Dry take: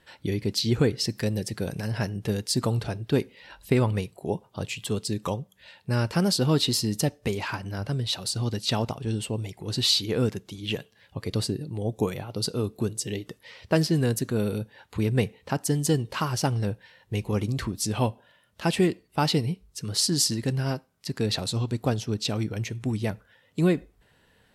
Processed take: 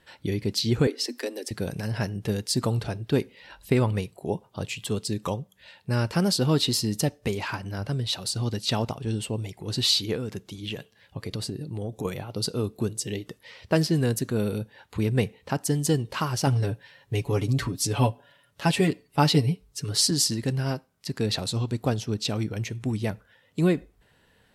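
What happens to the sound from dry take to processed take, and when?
0.87–1.51 Chebyshev high-pass 240 Hz, order 8
10.15–12.05 compressor 12:1, threshold -27 dBFS
16.46–20.11 comb 7.1 ms, depth 79%

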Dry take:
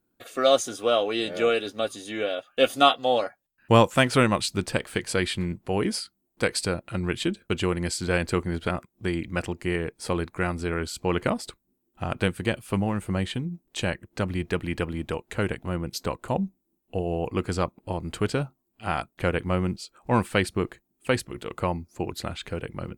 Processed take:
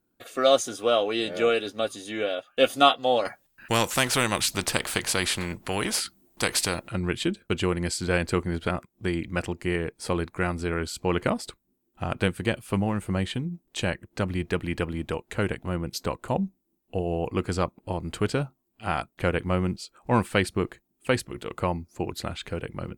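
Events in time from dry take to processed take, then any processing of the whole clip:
3.25–6.88 spectral compressor 2:1

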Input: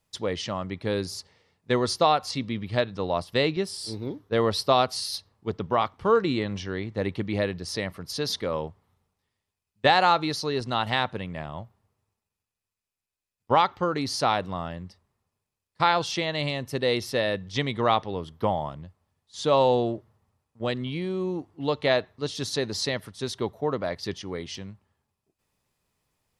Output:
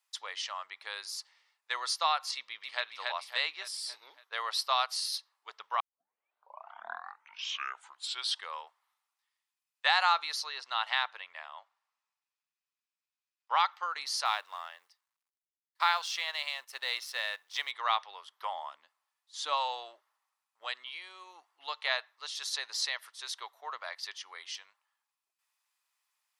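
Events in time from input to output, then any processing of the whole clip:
2.35–2.84 echo throw 0.28 s, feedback 50%, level -2.5 dB
5.8 tape start 2.81 s
10.44–13.6 LPF 6000 Hz
14.25–17.71 G.711 law mismatch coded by A
18.51–19.54 bell 250 Hz +15 dB
whole clip: HPF 960 Hz 24 dB/oct; gain -2.5 dB

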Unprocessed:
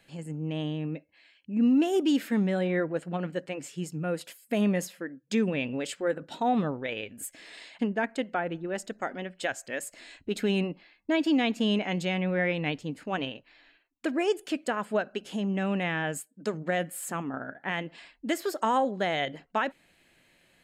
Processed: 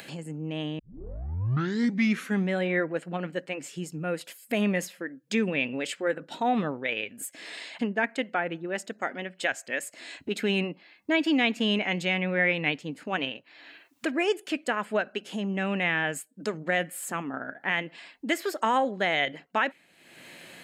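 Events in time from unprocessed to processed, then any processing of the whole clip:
0.79 tape start 1.70 s
whole clip: HPF 150 Hz; dynamic EQ 2200 Hz, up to +7 dB, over -46 dBFS, Q 1.2; upward compressor, threshold -32 dBFS

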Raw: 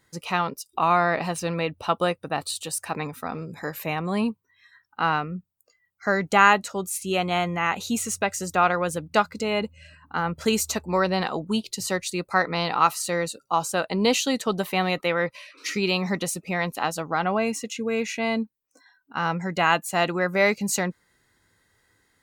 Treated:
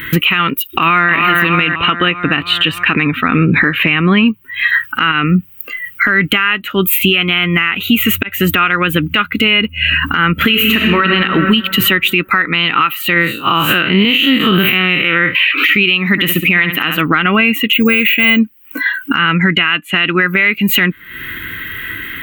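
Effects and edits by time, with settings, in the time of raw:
0.66–1.13 echo throw 0.31 s, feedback 50%, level -4.5 dB
1.74–4.28 air absorption 120 m
5.11–6.26 compressor 4:1, threshold -25 dBFS
8.23–8.87 fade in equal-power
10.32–11.1 reverb throw, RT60 1.9 s, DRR 3 dB
11.83–12.53 notch 4300 Hz, Q 9.3
13.14–15.35 time blur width 0.106 s
16.08–17.01 flutter echo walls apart 11.4 m, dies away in 0.33 s
17.73–18.39 careless resampling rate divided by 2×, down filtered, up hold
19.19–20.19 LPF 9800 Hz 24 dB/oct
whole clip: EQ curve 200 Hz 0 dB, 300 Hz +5 dB, 530 Hz -11 dB, 830 Hz -14 dB, 1300 Hz +5 dB, 3000 Hz +14 dB, 5200 Hz -26 dB, 9700 Hz -15 dB, 15000 Hz +14 dB; compressor 10:1, threshold -41 dBFS; maximiser +36 dB; gain -1 dB

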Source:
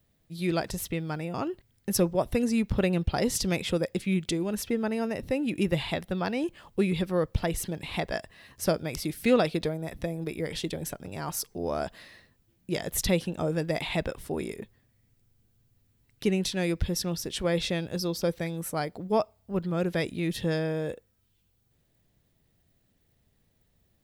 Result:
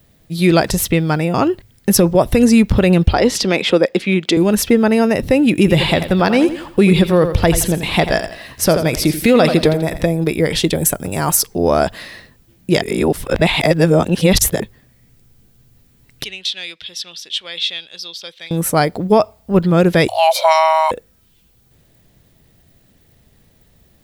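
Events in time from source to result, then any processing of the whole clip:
3.13–4.37 three-band isolator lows -24 dB, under 210 Hz, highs -14 dB, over 5200 Hz
5.55–10.07 feedback echo 85 ms, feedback 38%, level -12 dB
10.75–11.37 resonant high shelf 6500 Hz +8 dB, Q 1.5
12.82–14.6 reverse
16.24–18.51 band-pass 3400 Hz, Q 3.5
20.08–20.91 frequency shift +480 Hz
whole clip: de-hum 50.21 Hz, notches 2; maximiser +17.5 dB; gain -1 dB

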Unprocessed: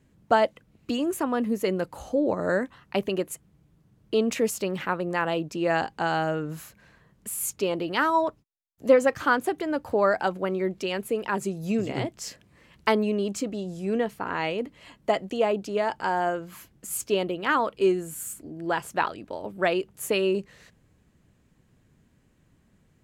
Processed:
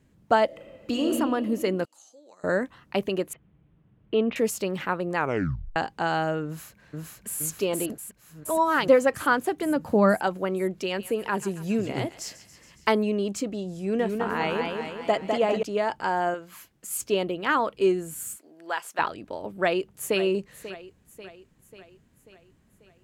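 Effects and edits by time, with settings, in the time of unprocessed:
0.45–1.07 reverb throw, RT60 2.3 s, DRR -0.5 dB
1.85–2.44 band-pass 6600 Hz, Q 1.9
3.33–4.36 steep low-pass 3300 Hz
5.16 tape stop 0.60 s
6.46–7.38 echo throw 0.47 s, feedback 70%, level -0.5 dB
7.9–8.88 reverse
9.62–10.16 bell 190 Hz +13.5 dB
10.84–12.89 thinning echo 0.139 s, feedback 74%, high-pass 1000 Hz, level -15 dB
13.79–15.63 warbling echo 0.2 s, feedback 56%, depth 111 cents, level -4 dB
16.34–16.99 low shelf 400 Hz -10 dB
18.36–18.99 Bessel high-pass 830 Hz
19.58–20.2 echo throw 0.54 s, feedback 55%, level -14 dB

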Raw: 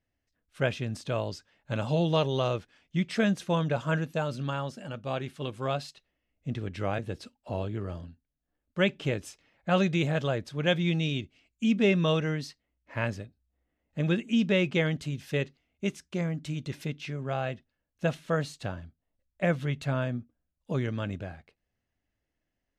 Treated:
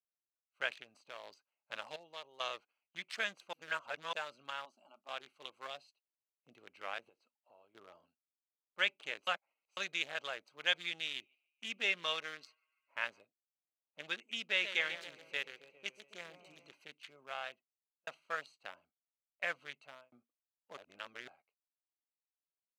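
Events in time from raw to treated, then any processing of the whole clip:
0.82–1.24 compressor 2:1, threshold -32 dBFS
1.96–2.4 gain -10 dB
3.53–4.13 reverse
4.65–5.09 fixed phaser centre 480 Hz, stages 6
5.67–6.57 bell 1400 Hz -9 dB 1.6 oct
7.09–7.75 compressor 3:1, threshold -45 dBFS
9.27–9.77 reverse
10.96–13.22 narrowing echo 0.146 s, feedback 83%, band-pass 1900 Hz, level -22 dB
14.45–16.71 warbling echo 0.136 s, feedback 65%, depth 145 cents, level -8.5 dB
17.41–18.07 fade out
19.67–20.12 fade out
20.77–21.28 reverse
whole clip: Wiener smoothing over 25 samples; gate -48 dBFS, range -8 dB; HPF 1400 Hz 12 dB/oct

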